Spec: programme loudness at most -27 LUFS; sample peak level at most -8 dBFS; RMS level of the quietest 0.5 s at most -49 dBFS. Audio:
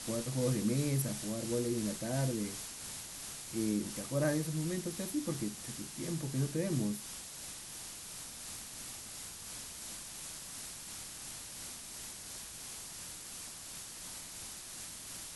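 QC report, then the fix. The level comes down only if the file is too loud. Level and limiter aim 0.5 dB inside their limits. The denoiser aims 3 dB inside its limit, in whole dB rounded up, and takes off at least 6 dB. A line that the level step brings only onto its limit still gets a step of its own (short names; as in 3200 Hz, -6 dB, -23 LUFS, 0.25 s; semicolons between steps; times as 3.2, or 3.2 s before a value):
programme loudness -38.0 LUFS: OK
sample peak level -19.5 dBFS: OK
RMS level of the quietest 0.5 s -47 dBFS: fail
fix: denoiser 6 dB, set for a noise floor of -47 dBFS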